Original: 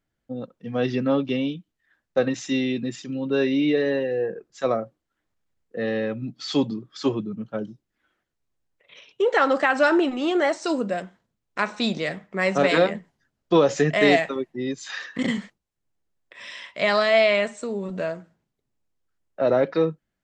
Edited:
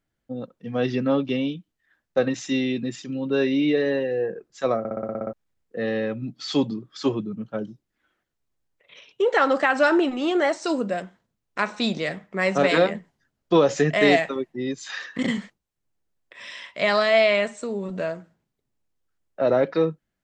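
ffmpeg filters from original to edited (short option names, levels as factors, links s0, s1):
-filter_complex "[0:a]asplit=10[s0][s1][s2][s3][s4][s5][s6][s7][s8][s9];[s0]atrim=end=4.852[s10];[s1]atrim=start=4.788:end=4.852[s11];[s2]atrim=start=4.788:end=4.852[s12];[s3]atrim=start=4.788:end=4.852[s13];[s4]atrim=start=4.788:end=4.852[s14];[s5]atrim=start=4.788:end=4.852[s15];[s6]atrim=start=4.788:end=4.852[s16];[s7]atrim=start=4.788:end=4.852[s17];[s8]atrim=start=4.788:end=4.852[s18];[s9]atrim=start=5.328[s19];[s10][s11]acrossfade=d=0.004:c1=hsin:c2=hsin[s20];[s20][s12]acrossfade=d=0.004:c1=hsin:c2=hsin[s21];[s21][s13]acrossfade=d=0.004:c1=hsin:c2=hsin[s22];[s22][s14]acrossfade=d=0.004:c1=hsin:c2=hsin[s23];[s23][s15]acrossfade=d=0.004:c1=hsin:c2=hsin[s24];[s24][s16]acrossfade=d=0.004:c1=hsin:c2=hsin[s25];[s25][s17]acrossfade=d=0.004:c1=hsin:c2=hsin[s26];[s26][s18]acrossfade=d=0.004:c1=hsin:c2=hsin[s27];[s27][s19]acrossfade=d=0.004:c1=hsin:c2=hsin"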